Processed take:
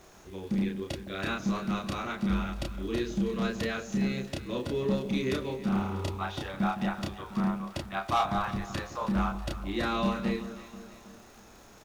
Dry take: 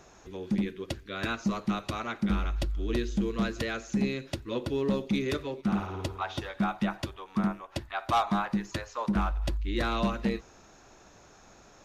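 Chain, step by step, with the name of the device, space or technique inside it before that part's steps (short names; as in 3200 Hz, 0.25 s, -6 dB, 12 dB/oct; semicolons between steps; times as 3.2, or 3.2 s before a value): 8.24–8.64 resonant low shelf 140 Hz +7.5 dB, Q 3; vinyl LP (crackle 93/s -44 dBFS; pink noise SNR 30 dB); doubler 31 ms -2 dB; echo with dull and thin repeats by turns 0.161 s, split 900 Hz, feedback 70%, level -11 dB; gain -2.5 dB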